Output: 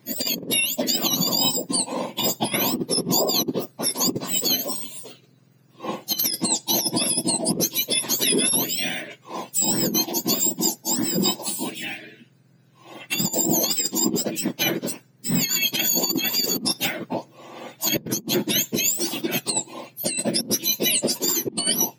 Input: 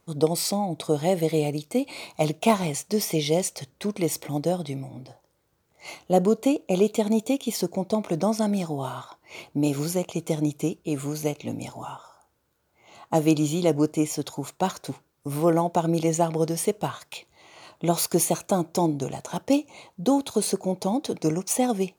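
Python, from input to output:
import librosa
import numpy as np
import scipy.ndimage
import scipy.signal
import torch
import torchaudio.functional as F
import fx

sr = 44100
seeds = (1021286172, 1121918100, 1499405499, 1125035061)

y = fx.octave_mirror(x, sr, pivot_hz=1500.0)
y = fx.low_shelf(y, sr, hz=290.0, db=-3.0)
y = fx.over_compress(y, sr, threshold_db=-29.0, ratio=-0.5)
y = F.gain(torch.from_numpy(y), 7.5).numpy()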